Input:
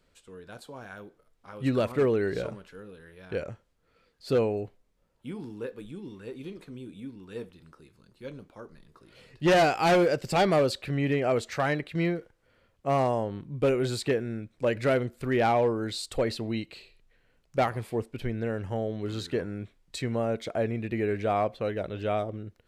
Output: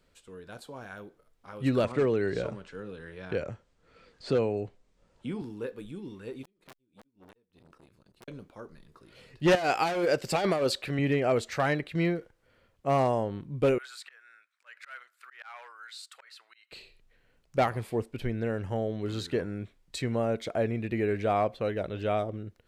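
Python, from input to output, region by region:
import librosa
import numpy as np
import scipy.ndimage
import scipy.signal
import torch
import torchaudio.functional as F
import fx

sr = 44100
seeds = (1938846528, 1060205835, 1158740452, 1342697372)

y = fx.chain(x, sr, fx.steep_lowpass(hz=8900.0, slope=36),
    fx.band_squash(depth_pct=40), at=(1.84, 5.42))
y = fx.chain(y, sr, fx.gate_flip(shuts_db=-34.0, range_db=-34),
    fx.overflow_wrap(gain_db=38.0),
    fx.transformer_sat(knee_hz=1100.0), at=(6.43, 8.28))
y = fx.chain(y, sr, fx.low_shelf(hz=180.0, db=-10.0),
    fx.over_compress(threshold_db=-25.0, ratio=-0.5), at=(9.55, 10.99))
y = fx.chain(y, sr, fx.ladder_highpass(hz=1200.0, resonance_pct=55),
    fx.auto_swell(attack_ms=194.0), at=(13.78, 16.72))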